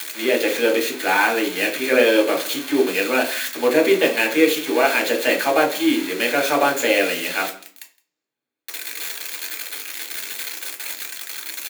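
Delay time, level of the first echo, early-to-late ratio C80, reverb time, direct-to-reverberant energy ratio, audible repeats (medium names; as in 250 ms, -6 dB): 165 ms, -23.0 dB, 15.5 dB, 0.50 s, 1.0 dB, 1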